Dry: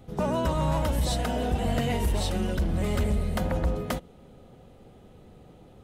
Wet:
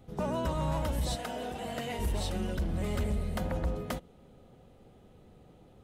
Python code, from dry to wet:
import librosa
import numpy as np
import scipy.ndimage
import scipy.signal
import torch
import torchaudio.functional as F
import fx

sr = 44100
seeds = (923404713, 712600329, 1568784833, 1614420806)

y = fx.highpass(x, sr, hz=390.0, slope=6, at=(1.15, 1.99))
y = y * librosa.db_to_amplitude(-5.5)